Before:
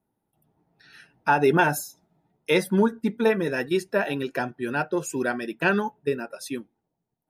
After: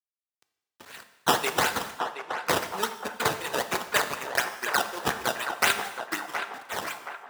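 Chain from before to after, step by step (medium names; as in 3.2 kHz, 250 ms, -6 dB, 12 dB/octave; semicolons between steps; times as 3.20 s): tape stop on the ending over 1.56 s; frequency weighting ITU-R 468; integer overflow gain 14 dB; flange 1.9 Hz, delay 5.3 ms, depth 9.8 ms, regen +69%; decimation with a swept rate 14×, swing 100% 4 Hz; bass shelf 450 Hz -9.5 dB; transient shaper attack +9 dB, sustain -6 dB; word length cut 8-bit, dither none; high-pass 87 Hz 12 dB/octave; on a send: band-passed feedback delay 722 ms, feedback 52%, band-pass 950 Hz, level -6 dB; on the sum: gated-style reverb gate 360 ms falling, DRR 9 dB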